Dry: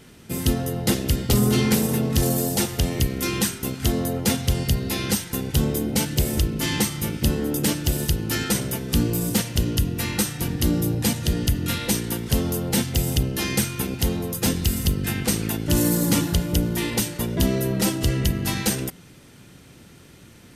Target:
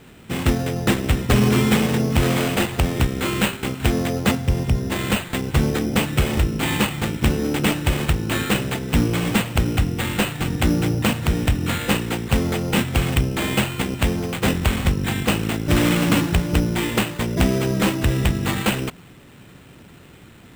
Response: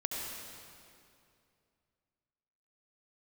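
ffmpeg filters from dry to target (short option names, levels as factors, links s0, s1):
-filter_complex "[0:a]asettb=1/sr,asplit=3[s0][s1][s2];[s0]atrim=end=4.314[s3];[s1]atrim=start=4.31:end=4.92,asetpts=PTS-STARTPTS,afade=t=in:d=0.004:c=qsin,afade=t=out:st=0.606:d=0.004:c=qsin,lowpass=f=1700:p=1[s4];[s2]atrim=start=4.916[s5];[s3][s4]acrossfade=d=0.004:c1=hsin:c2=qsin[s6];[s6][s5]acrossfade=d=0.004:c1=qsin:c2=hsin,acrusher=samples=8:mix=1:aa=0.000001,volume=1.33"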